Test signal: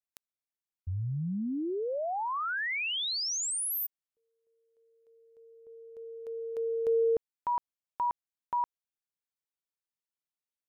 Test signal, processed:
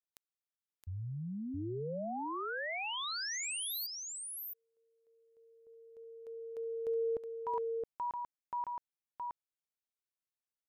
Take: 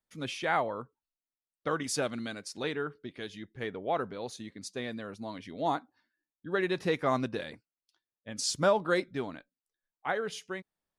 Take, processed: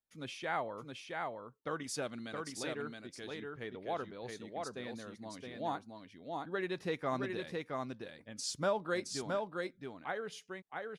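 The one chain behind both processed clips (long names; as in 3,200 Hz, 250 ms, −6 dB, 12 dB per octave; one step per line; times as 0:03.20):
single-tap delay 669 ms −3.5 dB
level −7.5 dB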